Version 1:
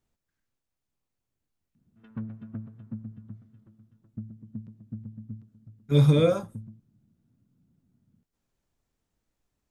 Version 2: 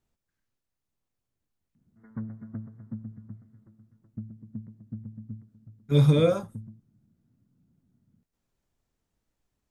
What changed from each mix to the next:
speech: send −6.0 dB
background: add linear-phase brick-wall low-pass 2,200 Hz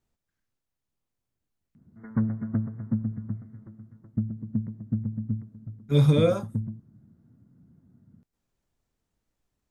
background +10.5 dB

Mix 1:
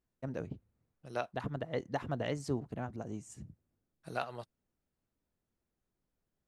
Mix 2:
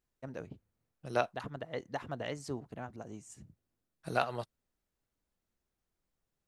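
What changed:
first voice: add low-shelf EQ 460 Hz −6.5 dB
second voice +6.0 dB

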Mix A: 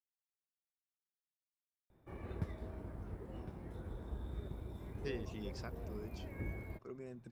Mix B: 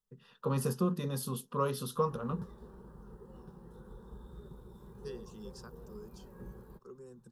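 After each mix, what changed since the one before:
first voice: unmuted
second voice: remove low-pass filter 5,900 Hz
master: add phaser with its sweep stopped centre 440 Hz, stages 8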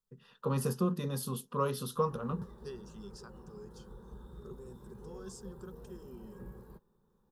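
second voice: entry −2.40 s

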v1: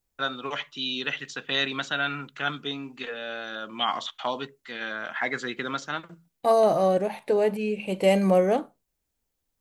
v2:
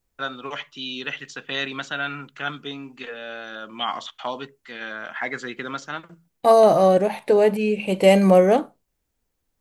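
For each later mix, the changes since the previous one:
first voice: add parametric band 3,800 Hz −4 dB 0.23 octaves
second voice +6.0 dB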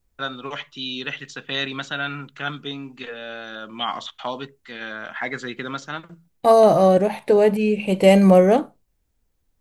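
first voice: add parametric band 3,800 Hz +4 dB 0.23 octaves
master: add low-shelf EQ 160 Hz +8.5 dB

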